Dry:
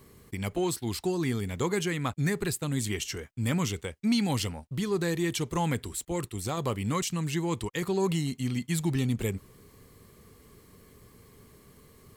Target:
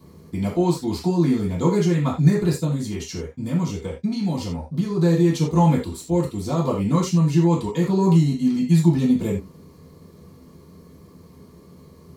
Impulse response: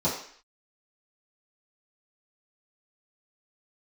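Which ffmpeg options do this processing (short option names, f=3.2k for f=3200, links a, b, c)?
-filter_complex "[0:a]asettb=1/sr,asplit=3[a][b][c];[a]atrim=end=2.634[d];[b]atrim=start=2.63:end=4.97,asetpts=PTS-STARTPTS,afade=t=in:d=0.004:c=qsin,afade=t=out:st=2.336:d=0.004:c=qsin,acompressor=threshold=-30dB:ratio=6[e];[c]atrim=start=4.966[f];[d][e]acrossfade=d=0.004:c1=hsin:c2=qsin[g];[g][f]acrossfade=d=0.004:c1=qsin:c2=hsin[h];[1:a]atrim=start_sample=2205,atrim=end_sample=4410[i];[h][i]afir=irnorm=-1:irlink=0,volume=-7dB"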